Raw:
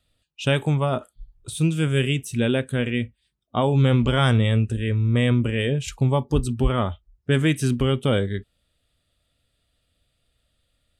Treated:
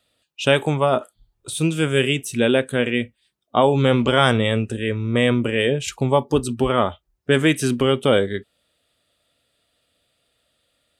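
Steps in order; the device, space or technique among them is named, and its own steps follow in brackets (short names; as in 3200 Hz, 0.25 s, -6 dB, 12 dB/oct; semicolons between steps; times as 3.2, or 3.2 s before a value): filter by subtraction (in parallel: LPF 500 Hz 12 dB/oct + phase invert); on the sum: gain +5 dB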